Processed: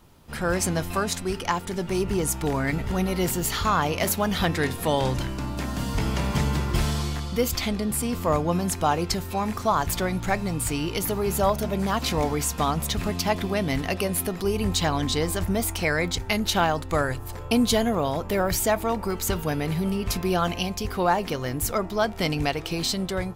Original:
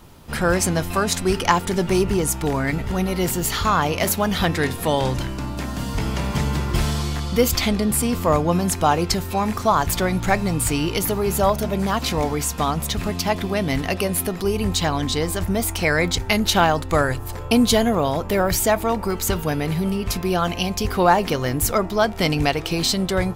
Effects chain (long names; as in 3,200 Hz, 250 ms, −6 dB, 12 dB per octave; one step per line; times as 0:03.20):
automatic gain control gain up to 7.5 dB
level −8.5 dB